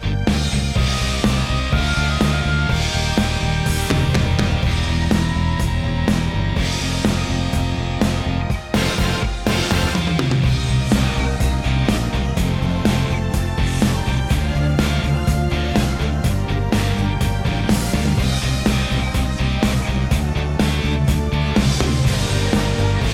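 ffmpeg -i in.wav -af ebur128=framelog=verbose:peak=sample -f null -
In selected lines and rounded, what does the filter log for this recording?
Integrated loudness:
  I:         -19.0 LUFS
  Threshold: -29.0 LUFS
Loudness range:
  LRA:         1.2 LU
  Threshold: -39.1 LUFS
  LRA low:   -19.7 LUFS
  LRA high:  -18.5 LUFS
Sample peak:
  Peak:       -5.4 dBFS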